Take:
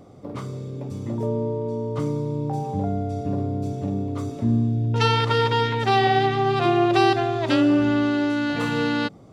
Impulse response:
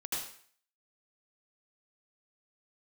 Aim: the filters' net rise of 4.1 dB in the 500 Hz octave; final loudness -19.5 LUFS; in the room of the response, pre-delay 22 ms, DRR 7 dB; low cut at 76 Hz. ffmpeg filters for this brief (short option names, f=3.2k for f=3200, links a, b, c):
-filter_complex "[0:a]highpass=76,equalizer=f=500:t=o:g=5.5,asplit=2[a][b];[1:a]atrim=start_sample=2205,adelay=22[c];[b][c]afir=irnorm=-1:irlink=0,volume=-10dB[d];[a][d]amix=inputs=2:normalize=0,volume=0.5dB"